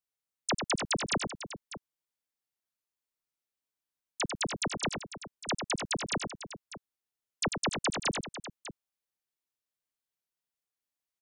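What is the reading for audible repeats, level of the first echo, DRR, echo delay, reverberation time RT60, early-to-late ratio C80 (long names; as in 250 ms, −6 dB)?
3, −6.0 dB, no reverb audible, 96 ms, no reverb audible, no reverb audible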